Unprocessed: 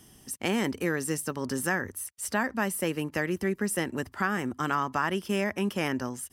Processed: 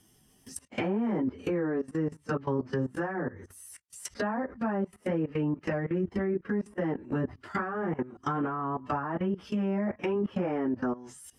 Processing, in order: plain phase-vocoder stretch 1.8×; level held to a coarse grid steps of 18 dB; low-pass that closes with the level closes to 800 Hz, closed at -32.5 dBFS; trim +8.5 dB

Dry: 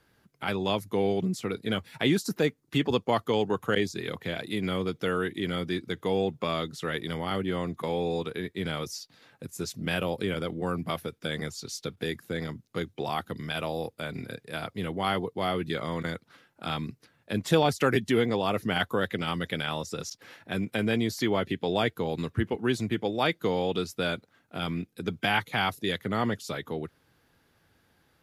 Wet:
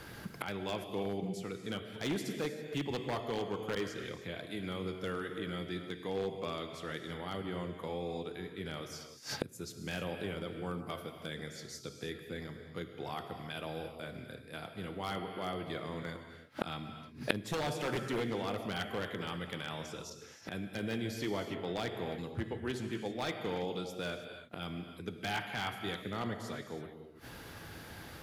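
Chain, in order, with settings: gated-style reverb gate 350 ms flat, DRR 5.5 dB; wavefolder -17.5 dBFS; inverted gate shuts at -37 dBFS, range -27 dB; trim +17 dB

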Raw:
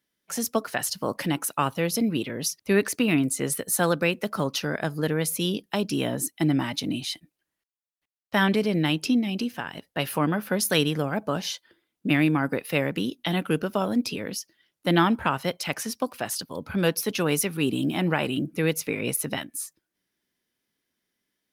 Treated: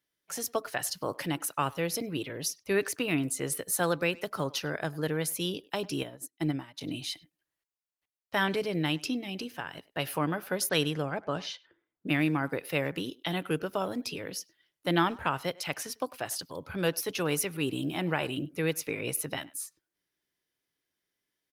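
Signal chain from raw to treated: 10.69–12.07 s: level-controlled noise filter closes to 1.6 kHz, open at -18.5 dBFS; peaking EQ 220 Hz -13.5 dB 0.29 oct; speakerphone echo 100 ms, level -21 dB; 6.03–6.81 s: upward expansion 2.5:1, over -37 dBFS; trim -4.5 dB

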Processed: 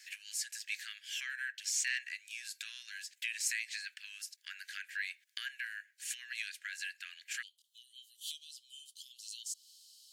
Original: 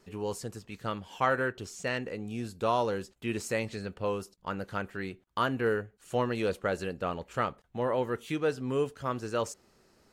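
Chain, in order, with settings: compression 6:1, threshold -40 dBFS, peak gain reduction 17 dB; rippled Chebyshev high-pass 1.6 kHz, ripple 3 dB, from 7.41 s 3 kHz; trim +14 dB

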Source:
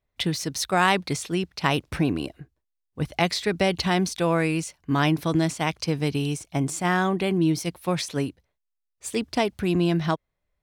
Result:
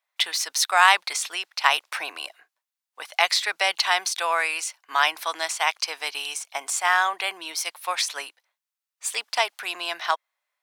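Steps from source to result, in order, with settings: high-pass 810 Hz 24 dB/octave; trim +6 dB

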